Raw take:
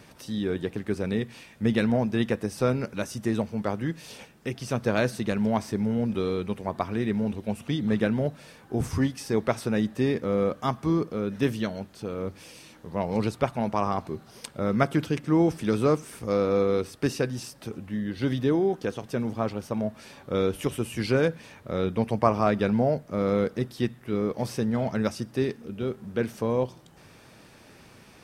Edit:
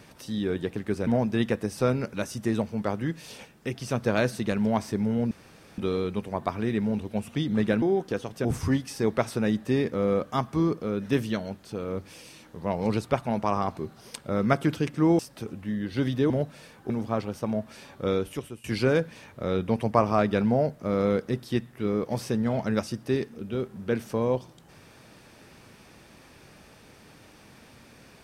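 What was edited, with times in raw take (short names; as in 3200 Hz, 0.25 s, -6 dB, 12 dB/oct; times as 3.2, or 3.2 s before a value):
1.07–1.87 cut
6.11 insert room tone 0.47 s
8.15–8.75 swap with 18.55–19.18
15.49–17.44 cut
20.34–20.92 fade out linear, to -20 dB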